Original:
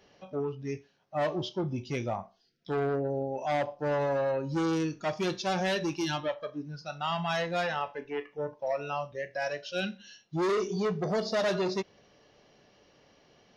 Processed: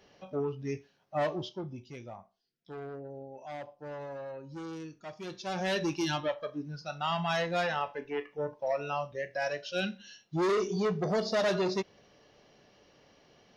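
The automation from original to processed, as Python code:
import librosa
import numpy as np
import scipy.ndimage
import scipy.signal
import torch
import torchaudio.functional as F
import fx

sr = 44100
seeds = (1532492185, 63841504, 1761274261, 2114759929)

y = fx.gain(x, sr, db=fx.line((1.18, 0.0), (1.94, -12.5), (5.19, -12.5), (5.78, 0.0)))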